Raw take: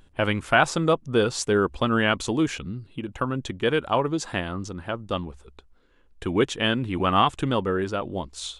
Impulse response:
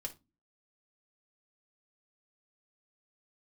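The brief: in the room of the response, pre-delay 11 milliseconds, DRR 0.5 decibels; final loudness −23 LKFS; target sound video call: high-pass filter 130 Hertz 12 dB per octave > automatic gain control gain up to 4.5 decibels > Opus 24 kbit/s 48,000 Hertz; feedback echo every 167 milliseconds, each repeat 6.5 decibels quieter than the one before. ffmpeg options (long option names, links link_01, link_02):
-filter_complex "[0:a]aecho=1:1:167|334|501|668|835|1002:0.473|0.222|0.105|0.0491|0.0231|0.0109,asplit=2[link_01][link_02];[1:a]atrim=start_sample=2205,adelay=11[link_03];[link_02][link_03]afir=irnorm=-1:irlink=0,volume=1.5dB[link_04];[link_01][link_04]amix=inputs=2:normalize=0,highpass=130,dynaudnorm=maxgain=4.5dB,volume=-1.5dB" -ar 48000 -c:a libopus -b:a 24k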